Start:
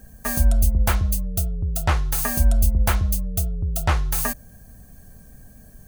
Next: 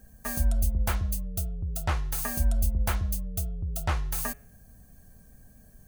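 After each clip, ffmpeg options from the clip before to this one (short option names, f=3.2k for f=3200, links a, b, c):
-af "bandreject=f=139.7:t=h:w=4,bandreject=f=279.4:t=h:w=4,bandreject=f=419.1:t=h:w=4,bandreject=f=558.8:t=h:w=4,bandreject=f=698.5:t=h:w=4,bandreject=f=838.2:t=h:w=4,bandreject=f=977.9:t=h:w=4,bandreject=f=1.1176k:t=h:w=4,bandreject=f=1.2573k:t=h:w=4,bandreject=f=1.397k:t=h:w=4,bandreject=f=1.5367k:t=h:w=4,bandreject=f=1.6764k:t=h:w=4,bandreject=f=1.8161k:t=h:w=4,bandreject=f=1.9558k:t=h:w=4,bandreject=f=2.0955k:t=h:w=4,bandreject=f=2.2352k:t=h:w=4,bandreject=f=2.3749k:t=h:w=4,bandreject=f=2.5146k:t=h:w=4,bandreject=f=2.6543k:t=h:w=4,bandreject=f=2.794k:t=h:w=4,bandreject=f=2.9337k:t=h:w=4,bandreject=f=3.0734k:t=h:w=4,bandreject=f=3.2131k:t=h:w=4,bandreject=f=3.3528k:t=h:w=4,bandreject=f=3.4925k:t=h:w=4,bandreject=f=3.6322k:t=h:w=4,volume=-7.5dB"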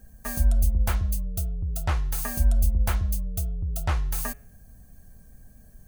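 -af "lowshelf=f=68:g=6.5"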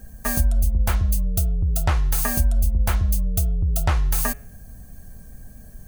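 -af "acompressor=threshold=-24dB:ratio=6,volume=8.5dB"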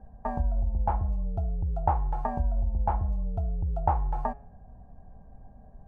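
-af "lowpass=f=840:t=q:w=7.4,volume=-8dB"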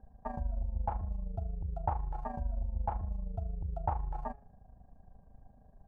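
-af "tremolo=f=26:d=0.667,volume=-5dB"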